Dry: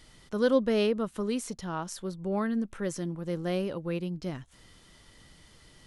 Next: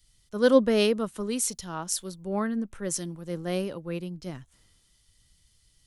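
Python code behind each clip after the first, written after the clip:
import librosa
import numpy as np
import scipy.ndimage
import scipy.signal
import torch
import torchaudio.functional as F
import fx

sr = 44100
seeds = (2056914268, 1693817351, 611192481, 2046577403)

y = fx.high_shelf(x, sr, hz=5400.0, db=11.0)
y = fx.band_widen(y, sr, depth_pct=70)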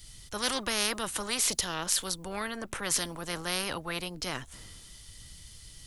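y = fx.spectral_comp(x, sr, ratio=4.0)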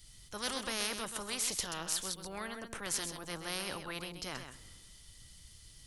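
y = x + 10.0 ** (-8.0 / 20.0) * np.pad(x, (int(130 * sr / 1000.0), 0))[:len(x)]
y = y * librosa.db_to_amplitude(-7.0)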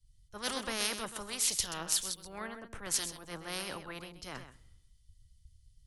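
y = fx.band_widen(x, sr, depth_pct=100)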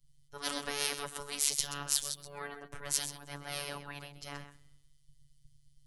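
y = fx.robotise(x, sr, hz=143.0)
y = y * librosa.db_to_amplitude(2.0)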